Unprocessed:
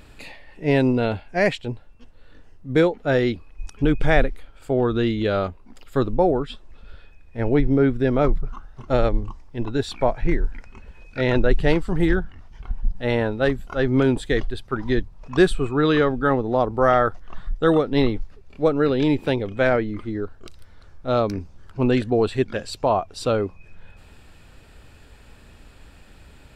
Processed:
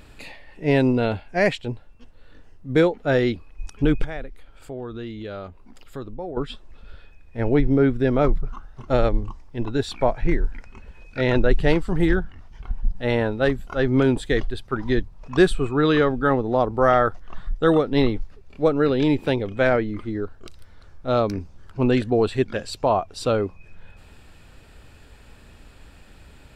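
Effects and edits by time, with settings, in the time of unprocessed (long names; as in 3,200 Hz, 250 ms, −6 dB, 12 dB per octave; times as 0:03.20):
0:04.04–0:06.37: downward compressor 2 to 1, threshold −40 dBFS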